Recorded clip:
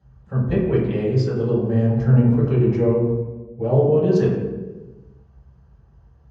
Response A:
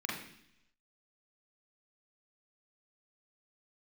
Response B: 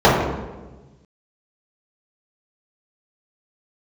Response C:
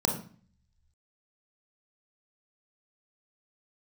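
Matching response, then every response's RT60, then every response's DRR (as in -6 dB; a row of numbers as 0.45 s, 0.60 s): B; 0.70 s, 1.2 s, 0.45 s; -4.0 dB, -11.0 dB, 2.0 dB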